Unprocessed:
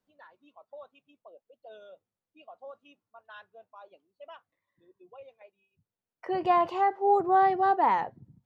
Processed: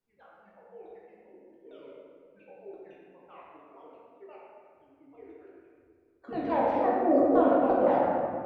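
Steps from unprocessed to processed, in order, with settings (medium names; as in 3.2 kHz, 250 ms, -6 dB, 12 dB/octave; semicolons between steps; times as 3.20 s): sawtooth pitch modulation -9 st, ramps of 171 ms; de-hum 58.2 Hz, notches 35; reverberation RT60 2.1 s, pre-delay 6 ms, DRR -6 dB; trim -6 dB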